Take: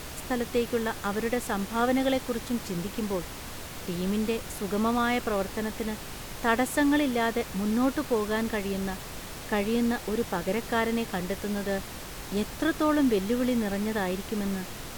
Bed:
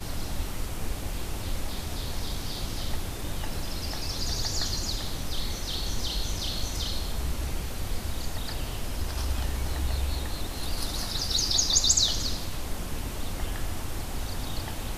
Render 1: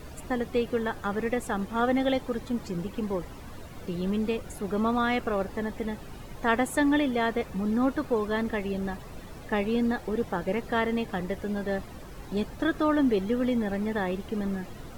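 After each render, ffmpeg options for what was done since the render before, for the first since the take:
-af "afftdn=nr=13:nf=-40"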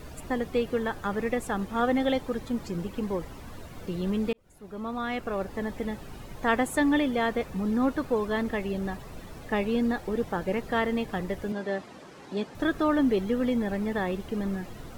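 -filter_complex "[0:a]asettb=1/sr,asplit=3[a][b][c];[a]atrim=end=11.524[d];[b]atrim=start=11.52:end=12.55,asetpts=PTS-STARTPTS,afade=t=in:d=0.004:c=qsin,afade=t=out:st=1.026:d=0.004:c=qsin,highpass=210,lowpass=7.3k[e];[c]atrim=start=12.546[f];[d][e]acrossfade=d=0.004:c1=hsin:c2=qsin[g];[g][f]acrossfade=d=0.004:c1=qsin:c2=hsin,asplit=2[h][i];[h]atrim=end=4.33,asetpts=PTS-STARTPTS,afade=t=out:st=4.326:d=0.004:c=hsin[j];[i]atrim=start=4.33,asetpts=PTS-STARTPTS,afade=t=in:d=1.38[k];[j][k]concat=n=2:v=0:a=1"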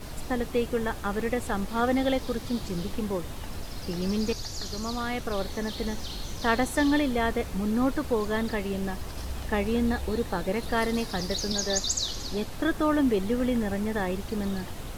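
-filter_complex "[1:a]volume=-6.5dB[a];[0:a][a]amix=inputs=2:normalize=0"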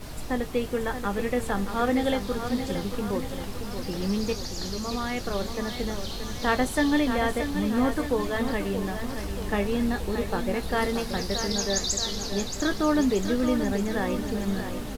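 -filter_complex "[0:a]asplit=2[a][b];[b]adelay=20,volume=-10.5dB[c];[a][c]amix=inputs=2:normalize=0,aecho=1:1:628|1256|1884|2512|3140|3768:0.376|0.203|0.11|0.0592|0.032|0.0173"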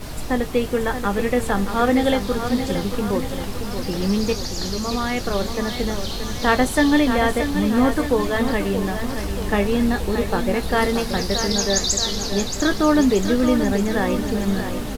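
-af "volume=6.5dB"

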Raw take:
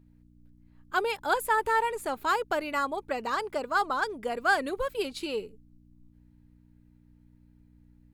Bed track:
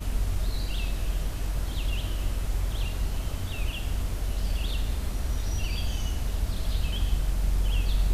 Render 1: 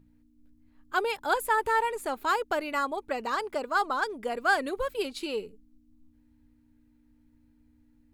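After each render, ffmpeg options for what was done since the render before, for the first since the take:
-af "bandreject=f=60:t=h:w=4,bandreject=f=120:t=h:w=4,bandreject=f=180:t=h:w=4"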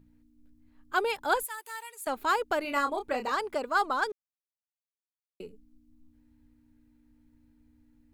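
-filter_complex "[0:a]asettb=1/sr,asplit=3[a][b][c];[a]atrim=end=1.434[d];[b]atrim=start=1.43:end=2.07,asetpts=PTS-STARTPTS,afade=t=in:d=0.004:c=qsin,afade=t=out:st=0.636:d=0.004:c=qsin,aderivative[e];[c]atrim=start=2.066[f];[d][e]acrossfade=d=0.004:c1=hsin:c2=qsin[g];[g][f]acrossfade=d=0.004:c1=qsin:c2=hsin,asettb=1/sr,asplit=3[h][i][j];[h]atrim=end=2.624[k];[i]atrim=start=2.62:end=3.32,asetpts=PTS-STARTPTS,afade=t=in:d=0.004:c=qsin,afade=t=out:st=0.696:d=0.004:c=qsin,asplit=2[l][m];[m]adelay=28,volume=-6dB[n];[l][n]amix=inputs=2:normalize=0,atrim=end_sample=30870[o];[j]atrim=start=3.316[p];[k][o]acrossfade=d=0.004:c1=hsin:c2=qsin[q];[q][p]acrossfade=d=0.004:c1=qsin:c2=hsin,asplit=3[r][s][t];[r]atrim=end=4.12,asetpts=PTS-STARTPTS,afade=t=out:st=4.116:d=0.004:c=hsin[u];[s]atrim=start=4.12:end=5.4,asetpts=PTS-STARTPTS,volume=0[v];[t]atrim=start=5.4,asetpts=PTS-STARTPTS,afade=t=in:d=0.004:c=hsin[w];[u][v][w]concat=n=3:v=0:a=1"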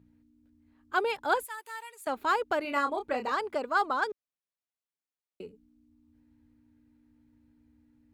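-af "highpass=61,highshelf=f=6.1k:g=-9"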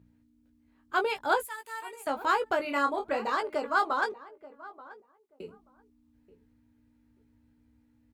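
-filter_complex "[0:a]asplit=2[a][b];[b]adelay=18,volume=-6dB[c];[a][c]amix=inputs=2:normalize=0,asplit=2[d][e];[e]adelay=882,lowpass=f=1.2k:p=1,volume=-17dB,asplit=2[f][g];[g]adelay=882,lowpass=f=1.2k:p=1,volume=0.18[h];[d][f][h]amix=inputs=3:normalize=0"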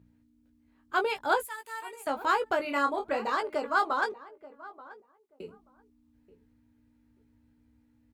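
-af anull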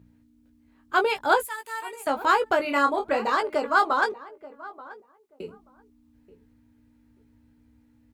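-af "volume=5.5dB"

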